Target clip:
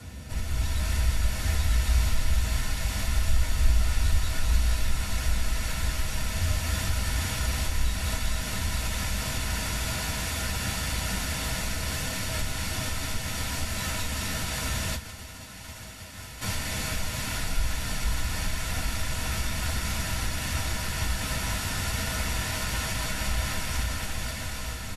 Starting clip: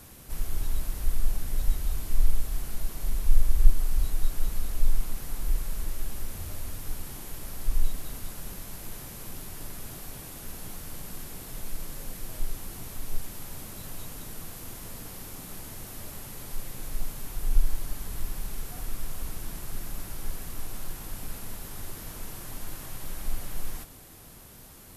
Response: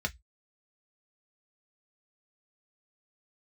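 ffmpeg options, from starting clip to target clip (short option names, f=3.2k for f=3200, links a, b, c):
-filter_complex "[0:a]lowpass=f=11k:w=0.5412,lowpass=f=11k:w=1.3066,acrossover=split=810[a][b];[b]dynaudnorm=f=150:g=7:m=10dB[c];[a][c]amix=inputs=2:normalize=0,aecho=1:1:470|893|1274|1616|1925:0.631|0.398|0.251|0.158|0.1,asplit=2[d][e];[e]acompressor=threshold=-29dB:ratio=6,volume=1.5dB[f];[d][f]amix=inputs=2:normalize=0,asplit=3[g][h][i];[g]afade=t=out:st=14.95:d=0.02[j];[h]agate=range=-33dB:threshold=-18dB:ratio=3:detection=peak,afade=t=in:st=14.95:d=0.02,afade=t=out:st=16.41:d=0.02[k];[i]afade=t=in:st=16.41:d=0.02[l];[j][k][l]amix=inputs=3:normalize=0[m];[1:a]atrim=start_sample=2205[n];[m][n]afir=irnorm=-1:irlink=0,volume=-5.5dB"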